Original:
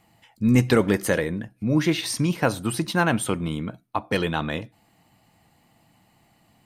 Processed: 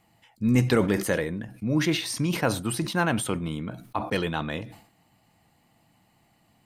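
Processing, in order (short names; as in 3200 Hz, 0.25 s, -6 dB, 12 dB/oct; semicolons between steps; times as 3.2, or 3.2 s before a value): sustainer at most 100 dB/s; gain -3.5 dB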